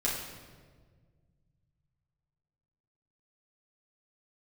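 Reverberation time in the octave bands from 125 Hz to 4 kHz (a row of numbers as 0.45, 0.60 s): 3.6, 2.4, 1.9, 1.4, 1.2, 1.1 s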